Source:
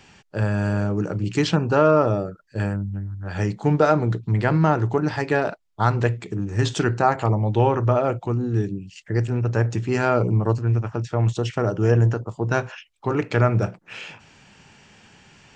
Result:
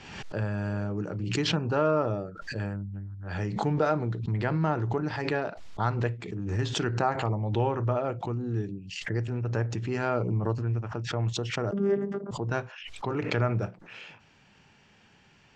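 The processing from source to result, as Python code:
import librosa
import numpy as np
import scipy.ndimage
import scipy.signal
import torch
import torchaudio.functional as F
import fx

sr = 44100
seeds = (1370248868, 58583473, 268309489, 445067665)

y = scipy.signal.sosfilt(scipy.signal.butter(2, 5500.0, 'lowpass', fs=sr, output='sos'), x)
y = fx.vocoder(y, sr, bands=16, carrier='saw', carrier_hz=199.0, at=(11.71, 12.31))
y = fx.pre_swell(y, sr, db_per_s=53.0)
y = y * 10.0 ** (-8.5 / 20.0)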